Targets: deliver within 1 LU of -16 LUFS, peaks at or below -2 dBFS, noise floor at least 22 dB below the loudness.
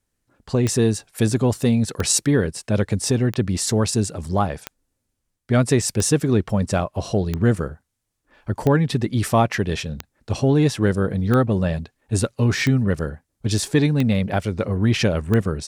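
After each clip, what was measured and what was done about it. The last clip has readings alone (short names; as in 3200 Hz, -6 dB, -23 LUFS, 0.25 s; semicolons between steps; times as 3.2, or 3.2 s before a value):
clicks 12; loudness -21.0 LUFS; peak -5.0 dBFS; loudness target -16.0 LUFS
-> de-click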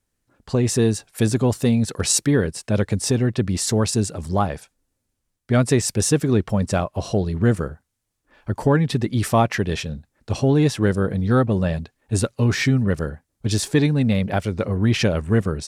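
clicks 0; loudness -21.0 LUFS; peak -5.0 dBFS; loudness target -16.0 LUFS
-> gain +5 dB; limiter -2 dBFS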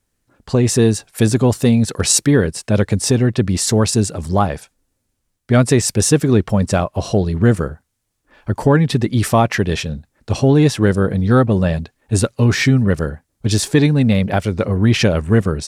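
loudness -16.0 LUFS; peak -2.0 dBFS; noise floor -71 dBFS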